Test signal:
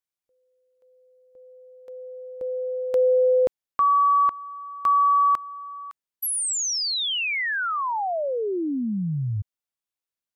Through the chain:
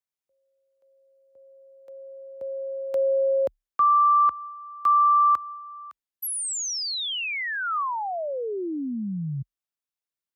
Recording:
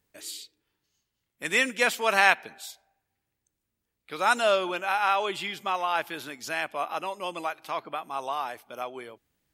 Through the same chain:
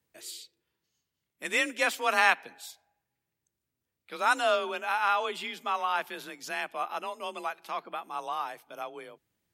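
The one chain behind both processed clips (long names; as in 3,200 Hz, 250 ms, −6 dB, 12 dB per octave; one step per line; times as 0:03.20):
frequency shifter +33 Hz
dynamic equaliser 1,200 Hz, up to +4 dB, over −33 dBFS, Q 3.5
level −3.5 dB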